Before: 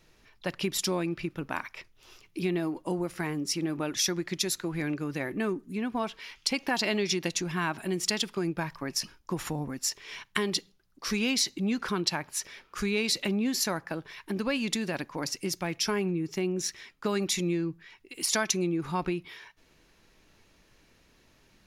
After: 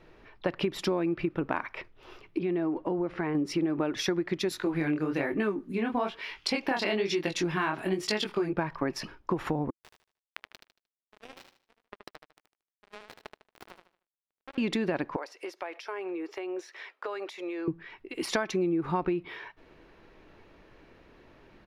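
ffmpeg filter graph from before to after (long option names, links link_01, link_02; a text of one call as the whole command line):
ffmpeg -i in.wav -filter_complex "[0:a]asettb=1/sr,asplit=3[link_01][link_02][link_03];[link_01]atrim=end=2.384[link_04];[link_02]atrim=start=2.38:end=3.35,asetpts=PTS-STARTPTS,afade=type=in:duration=0.004:curve=qsin,afade=type=out:start_time=0.966:duration=0.004:curve=qsin,lowpass=4300,acompressor=threshold=-39dB:ratio=2:attack=3.2:release=140:knee=1:detection=peak[link_05];[link_03]atrim=start=3.346[link_06];[link_04][link_05]acrossfade=duration=0.004:curve1=hsin:curve2=qsin[link_07];[link_07][link_06]acrossfade=duration=0.004:curve1=qsin:curve2=hsin,asettb=1/sr,asplit=3[link_08][link_09][link_10];[link_08]atrim=end=4.494[link_11];[link_09]atrim=start=4.49:end=8.53,asetpts=PTS-STARTPTS,afade=type=in:duration=0.004:curve=qsin,afade=type=out:start_time=4.036:duration=0.004:curve=qsin,highshelf=frequency=2600:gain=9.5,flanger=delay=18.5:depth=8:speed=1.1[link_12];[link_10]atrim=start=8.526[link_13];[link_11][link_12]acrossfade=duration=0.004:curve1=hsin:curve2=qsin[link_14];[link_14][link_13]acrossfade=duration=0.004:curve1=qsin:curve2=hsin,asettb=1/sr,asplit=3[link_15][link_16][link_17];[link_15]atrim=end=9.704[link_18];[link_16]atrim=start=9.7:end=14.58,asetpts=PTS-STARTPTS,afade=type=in:duration=0.004:curve=qsin,afade=type=out:start_time=4.876:duration=0.004:curve=qsin,acrusher=bits=2:mix=0:aa=0.5,acompressor=threshold=-44dB:ratio=12:attack=3.2:release=140:knee=1:detection=peak,aecho=1:1:76|152|228|304:0.447|0.143|0.0457|0.0146,atrim=end_sample=215208[link_19];[link_17]atrim=start=14.576[link_20];[link_18][link_19]acrossfade=duration=0.004:curve1=hsin:curve2=qsin[link_21];[link_21][link_20]acrossfade=duration=0.004:curve1=qsin:curve2=hsin,asettb=1/sr,asplit=3[link_22][link_23][link_24];[link_22]atrim=end=15.164[link_25];[link_23]atrim=start=15.16:end=17.68,asetpts=PTS-STARTPTS,afade=type=in:duration=0.004:curve=qsin,afade=type=out:start_time=2.516:duration=0.004:curve=qsin,highpass=frequency=480:width=0.5412,highpass=frequency=480:width=1.3066,acompressor=threshold=-41dB:ratio=5:attack=3.2:release=140:knee=1:detection=peak[link_26];[link_24]atrim=start=17.676[link_27];[link_25][link_26]acrossfade=duration=0.004:curve1=hsin:curve2=qsin[link_28];[link_28][link_27]acrossfade=duration=0.004:curve1=qsin:curve2=hsin,firequalizer=gain_entry='entry(210,0);entry(330,6);entry(6600,-18)':delay=0.05:min_phase=1,acompressor=threshold=-30dB:ratio=6,volume=5dB" out.wav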